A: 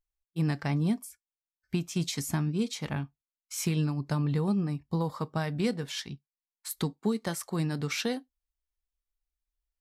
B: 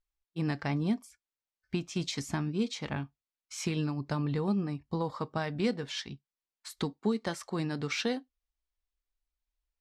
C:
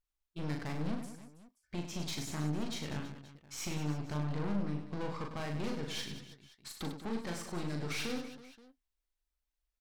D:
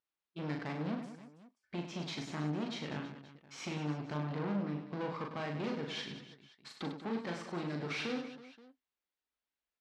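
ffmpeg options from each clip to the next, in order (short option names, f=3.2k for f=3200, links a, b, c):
-af "lowpass=5.8k,equalizer=f=160:t=o:w=0.42:g=-6"
-filter_complex "[0:a]aeval=exprs='(tanh(63.1*val(0)+0.6)-tanh(0.6))/63.1':c=same,asplit=2[a][b];[b]aecho=0:1:40|100|190|325|527.5:0.631|0.398|0.251|0.158|0.1[c];[a][c]amix=inputs=2:normalize=0"
-af "highpass=170,lowpass=3.8k,volume=1.5dB"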